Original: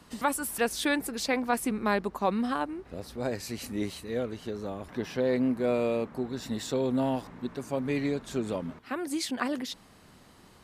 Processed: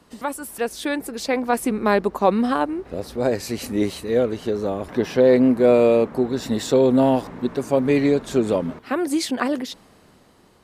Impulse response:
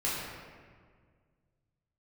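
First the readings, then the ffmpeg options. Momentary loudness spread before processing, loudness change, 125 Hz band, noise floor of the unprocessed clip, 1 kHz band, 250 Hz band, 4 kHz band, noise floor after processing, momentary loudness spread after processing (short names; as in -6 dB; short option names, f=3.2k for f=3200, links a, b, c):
10 LU, +10.0 dB, +8.5 dB, -56 dBFS, +7.5 dB, +9.5 dB, +5.0 dB, -54 dBFS, 12 LU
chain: -af "equalizer=f=460:t=o:w=1.6:g=5.5,dynaudnorm=f=410:g=7:m=11.5dB,volume=-2dB"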